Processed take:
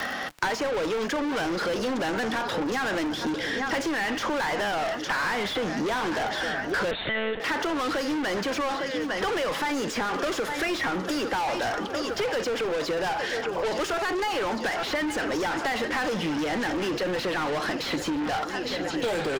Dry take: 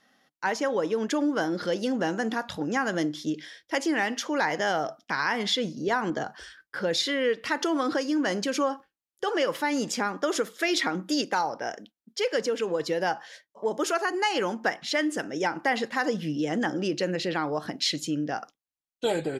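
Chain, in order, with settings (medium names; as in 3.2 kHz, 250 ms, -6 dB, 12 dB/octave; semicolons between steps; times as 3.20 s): feedback delay 855 ms, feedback 57%, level -19 dB; overdrive pedal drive 31 dB, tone 2.7 kHz, clips at -15 dBFS; crackle 43 per s -35 dBFS; frequency-shifting echo 476 ms, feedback 59%, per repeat -44 Hz, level -20 dB; 6.91–7.40 s: monotone LPC vocoder at 8 kHz 220 Hz; three bands compressed up and down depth 100%; trim -6 dB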